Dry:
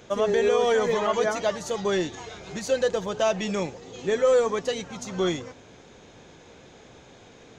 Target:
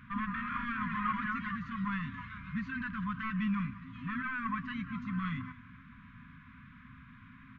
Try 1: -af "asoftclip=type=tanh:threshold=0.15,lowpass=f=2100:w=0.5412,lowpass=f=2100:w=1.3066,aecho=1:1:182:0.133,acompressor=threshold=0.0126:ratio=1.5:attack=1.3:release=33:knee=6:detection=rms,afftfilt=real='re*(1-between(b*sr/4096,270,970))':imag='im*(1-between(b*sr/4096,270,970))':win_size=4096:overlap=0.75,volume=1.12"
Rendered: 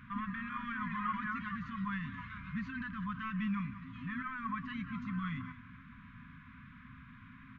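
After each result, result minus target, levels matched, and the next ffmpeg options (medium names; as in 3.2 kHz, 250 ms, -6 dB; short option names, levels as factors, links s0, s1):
compression: peak gain reduction +7 dB; saturation: distortion -9 dB
-af "asoftclip=type=tanh:threshold=0.15,lowpass=f=2100:w=0.5412,lowpass=f=2100:w=1.3066,aecho=1:1:182:0.133,afftfilt=real='re*(1-between(b*sr/4096,270,970))':imag='im*(1-between(b*sr/4096,270,970))':win_size=4096:overlap=0.75,volume=1.12"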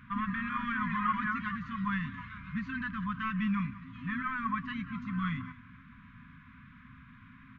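saturation: distortion -9 dB
-af "asoftclip=type=tanh:threshold=0.0631,lowpass=f=2100:w=0.5412,lowpass=f=2100:w=1.3066,aecho=1:1:182:0.133,afftfilt=real='re*(1-between(b*sr/4096,270,970))':imag='im*(1-between(b*sr/4096,270,970))':win_size=4096:overlap=0.75,volume=1.12"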